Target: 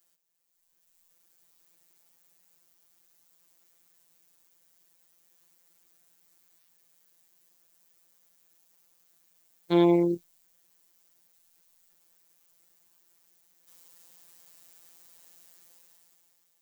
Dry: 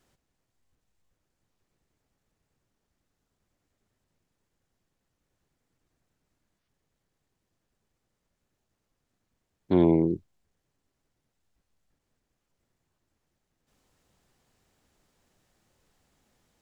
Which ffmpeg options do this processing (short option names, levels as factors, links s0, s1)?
-af "afftfilt=real='hypot(re,im)*cos(PI*b)':imag='0':win_size=1024:overlap=0.75,aemphasis=mode=production:type=riaa,dynaudnorm=f=150:g=11:m=5.01,volume=0.473"